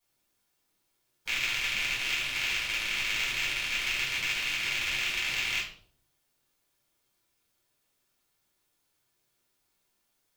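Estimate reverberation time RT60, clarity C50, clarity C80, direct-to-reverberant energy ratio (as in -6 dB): 0.55 s, 6.0 dB, 9.5 dB, -9.0 dB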